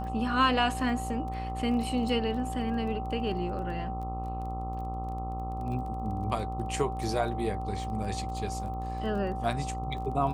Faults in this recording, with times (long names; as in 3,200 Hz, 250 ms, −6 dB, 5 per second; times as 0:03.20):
mains buzz 60 Hz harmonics 22 −36 dBFS
surface crackle 18 per second −39 dBFS
whistle 770 Hz −36 dBFS